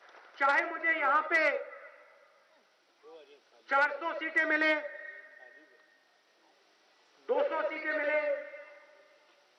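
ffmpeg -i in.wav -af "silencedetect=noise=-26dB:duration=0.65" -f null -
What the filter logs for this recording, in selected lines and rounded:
silence_start: 1.57
silence_end: 3.72 | silence_duration: 2.15
silence_start: 4.78
silence_end: 7.30 | silence_duration: 2.53
silence_start: 8.34
silence_end: 9.59 | silence_duration: 1.25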